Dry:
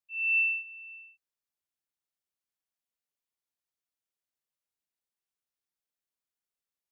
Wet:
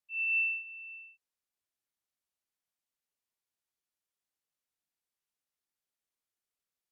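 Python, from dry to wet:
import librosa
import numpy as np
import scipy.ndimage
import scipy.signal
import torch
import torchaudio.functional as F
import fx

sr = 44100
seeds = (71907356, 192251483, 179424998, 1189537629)

y = fx.env_lowpass_down(x, sr, base_hz=2500.0, full_db=-27.5)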